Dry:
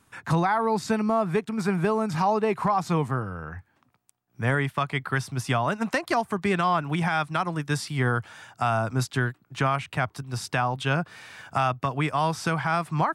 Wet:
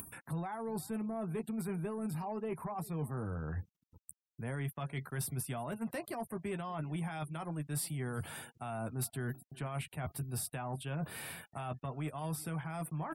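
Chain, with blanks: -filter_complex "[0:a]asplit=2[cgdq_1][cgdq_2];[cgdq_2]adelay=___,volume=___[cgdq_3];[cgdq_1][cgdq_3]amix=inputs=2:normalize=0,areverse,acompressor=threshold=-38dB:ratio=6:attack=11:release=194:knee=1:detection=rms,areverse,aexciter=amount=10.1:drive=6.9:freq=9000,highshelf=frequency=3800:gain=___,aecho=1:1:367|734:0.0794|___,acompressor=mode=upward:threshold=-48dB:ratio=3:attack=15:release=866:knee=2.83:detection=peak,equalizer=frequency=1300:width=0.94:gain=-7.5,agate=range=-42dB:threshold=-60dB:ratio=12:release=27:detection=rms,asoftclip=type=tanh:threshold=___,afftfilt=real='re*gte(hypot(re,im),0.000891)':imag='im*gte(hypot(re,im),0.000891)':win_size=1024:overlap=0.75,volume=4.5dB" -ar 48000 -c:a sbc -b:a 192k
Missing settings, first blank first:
13, -9dB, -9.5, 0.0278, -33dB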